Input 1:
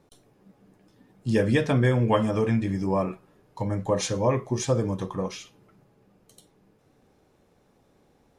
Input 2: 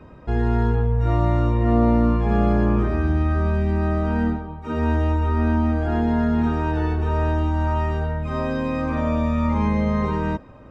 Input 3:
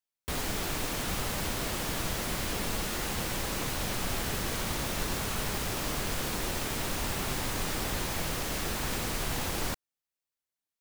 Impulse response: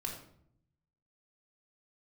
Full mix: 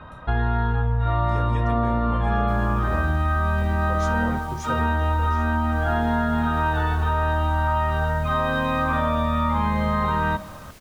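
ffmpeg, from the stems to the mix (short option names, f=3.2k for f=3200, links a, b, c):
-filter_complex "[0:a]volume=-9dB[a];[1:a]firequalizer=gain_entry='entry(150,0);entry(390,-10);entry(590,3);entry(1400,11);entry(2300,0);entry(3700,11);entry(5300,-13)':delay=0.05:min_phase=1,volume=1dB,asplit=2[b][c];[c]volume=-13.5dB[d];[2:a]adelay=2200,volume=-15dB[e];[3:a]atrim=start_sample=2205[f];[d][f]afir=irnorm=-1:irlink=0[g];[a][b][e][g]amix=inputs=4:normalize=0,acompressor=threshold=-18dB:ratio=6"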